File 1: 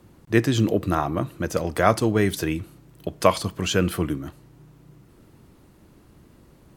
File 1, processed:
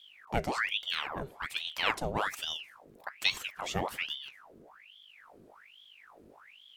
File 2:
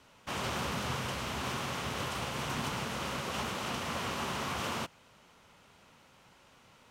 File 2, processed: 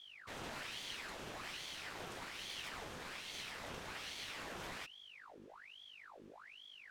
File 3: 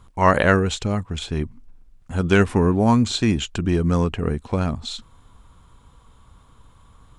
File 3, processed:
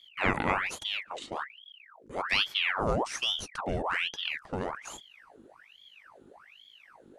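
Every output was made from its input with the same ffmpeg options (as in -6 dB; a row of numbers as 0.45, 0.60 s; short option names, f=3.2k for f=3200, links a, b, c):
-af "aeval=exprs='val(0)+0.00631*(sin(2*PI*50*n/s)+sin(2*PI*2*50*n/s)/2+sin(2*PI*3*50*n/s)/3+sin(2*PI*4*50*n/s)/4+sin(2*PI*5*50*n/s)/5)':c=same,aeval=exprs='val(0)*sin(2*PI*1800*n/s+1800*0.85/1.2*sin(2*PI*1.2*n/s))':c=same,volume=-9dB"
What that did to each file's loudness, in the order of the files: -10.0, -11.5, -10.0 LU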